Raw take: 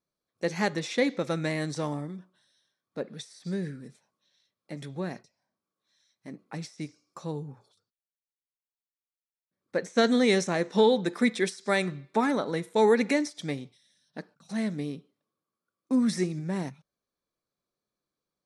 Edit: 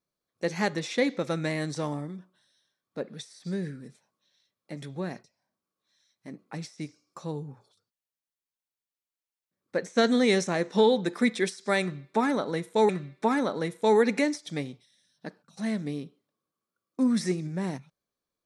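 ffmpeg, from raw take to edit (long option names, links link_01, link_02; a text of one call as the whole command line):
ffmpeg -i in.wav -filter_complex "[0:a]asplit=2[link_01][link_02];[link_01]atrim=end=12.892[link_03];[link_02]atrim=start=11.808[link_04];[link_03][link_04]acrossfade=duration=0.004:curve1=hsin:curve2=hsin" out.wav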